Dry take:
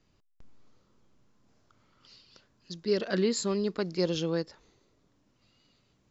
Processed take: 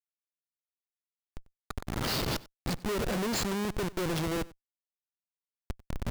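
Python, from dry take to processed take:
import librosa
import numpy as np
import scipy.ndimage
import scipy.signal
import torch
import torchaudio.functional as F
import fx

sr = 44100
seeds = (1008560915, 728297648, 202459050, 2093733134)

p1 = fx.recorder_agc(x, sr, target_db=-22.5, rise_db_per_s=18.0, max_gain_db=30)
p2 = fx.schmitt(p1, sr, flips_db=-33.5)
p3 = p2 + fx.echo_single(p2, sr, ms=94, db=-21.5, dry=0)
y = p3 * librosa.db_to_amplitude(3.5)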